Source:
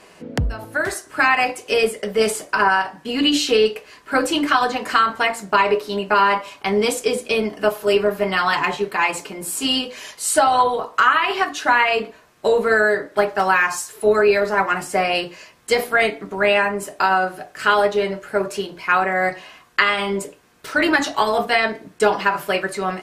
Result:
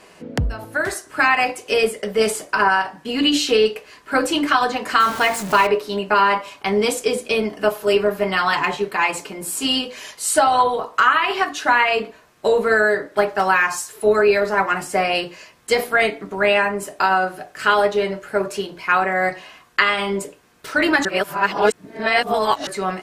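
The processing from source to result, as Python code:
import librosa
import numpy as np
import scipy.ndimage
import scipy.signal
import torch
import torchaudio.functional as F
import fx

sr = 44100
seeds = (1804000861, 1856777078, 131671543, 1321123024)

y = fx.zero_step(x, sr, step_db=-25.0, at=(5.0, 5.67))
y = fx.edit(y, sr, fx.reverse_span(start_s=21.05, length_s=1.62), tone=tone)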